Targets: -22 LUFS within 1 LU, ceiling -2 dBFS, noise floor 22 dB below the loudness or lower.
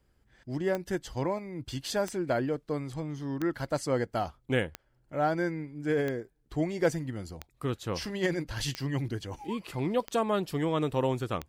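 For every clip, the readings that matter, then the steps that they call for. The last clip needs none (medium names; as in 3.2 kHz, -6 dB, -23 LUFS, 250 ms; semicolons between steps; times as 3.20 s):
clicks found 9; loudness -32.0 LUFS; peak level -14.0 dBFS; loudness target -22.0 LUFS
-> de-click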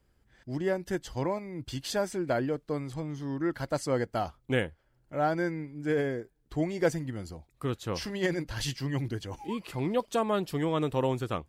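clicks found 0; loudness -32.0 LUFS; peak level -14.0 dBFS; loudness target -22.0 LUFS
-> trim +10 dB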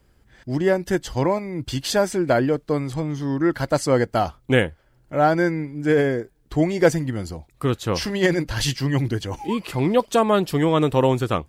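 loudness -22.0 LUFS; peak level -4.0 dBFS; noise floor -59 dBFS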